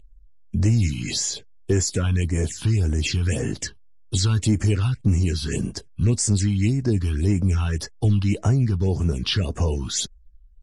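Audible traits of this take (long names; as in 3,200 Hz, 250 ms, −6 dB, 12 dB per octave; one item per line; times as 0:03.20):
phaser sweep stages 6, 1.8 Hz, lowest notch 510–3,900 Hz
Ogg Vorbis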